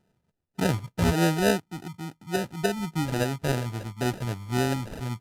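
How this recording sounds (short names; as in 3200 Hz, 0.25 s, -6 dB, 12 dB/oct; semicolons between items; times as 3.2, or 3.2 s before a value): phasing stages 12, 3.5 Hz, lowest notch 420–2100 Hz; aliases and images of a low sample rate 1100 Hz, jitter 0%; Vorbis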